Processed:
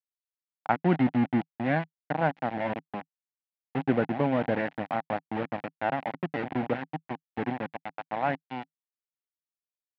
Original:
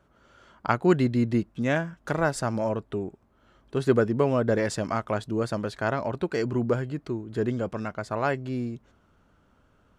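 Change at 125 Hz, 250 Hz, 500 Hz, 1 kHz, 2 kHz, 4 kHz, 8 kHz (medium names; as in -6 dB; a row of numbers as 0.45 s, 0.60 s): -5.5 dB, -2.0 dB, -5.5 dB, +1.0 dB, -1.5 dB, -5.0 dB, under -30 dB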